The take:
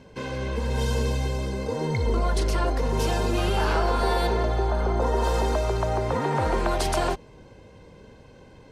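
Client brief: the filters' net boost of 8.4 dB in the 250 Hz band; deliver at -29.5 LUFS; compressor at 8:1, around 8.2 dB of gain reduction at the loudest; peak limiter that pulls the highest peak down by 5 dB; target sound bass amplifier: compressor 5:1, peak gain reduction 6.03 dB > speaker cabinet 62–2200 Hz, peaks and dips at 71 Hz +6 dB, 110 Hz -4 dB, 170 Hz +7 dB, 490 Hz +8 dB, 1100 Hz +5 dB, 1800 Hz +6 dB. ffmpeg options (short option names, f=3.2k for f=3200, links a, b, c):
-af "equalizer=f=250:t=o:g=9,acompressor=threshold=-26dB:ratio=8,alimiter=limit=-23dB:level=0:latency=1,acompressor=threshold=-33dB:ratio=5,highpass=f=62:w=0.5412,highpass=f=62:w=1.3066,equalizer=f=71:t=q:w=4:g=6,equalizer=f=110:t=q:w=4:g=-4,equalizer=f=170:t=q:w=4:g=7,equalizer=f=490:t=q:w=4:g=8,equalizer=f=1.1k:t=q:w=4:g=5,equalizer=f=1.8k:t=q:w=4:g=6,lowpass=f=2.2k:w=0.5412,lowpass=f=2.2k:w=1.3066,volume=6dB"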